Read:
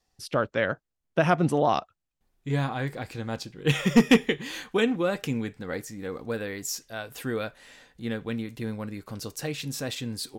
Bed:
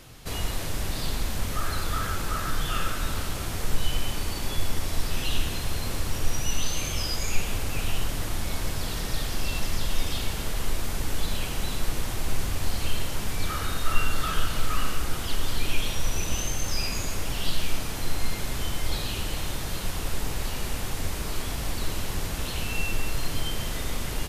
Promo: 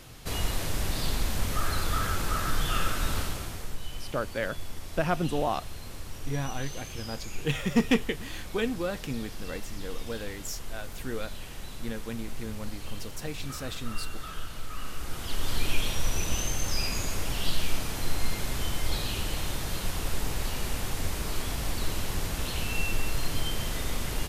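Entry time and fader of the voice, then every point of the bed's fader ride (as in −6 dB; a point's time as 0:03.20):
3.80 s, −5.5 dB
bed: 0:03.20 0 dB
0:03.78 −11.5 dB
0:14.72 −11.5 dB
0:15.55 −1 dB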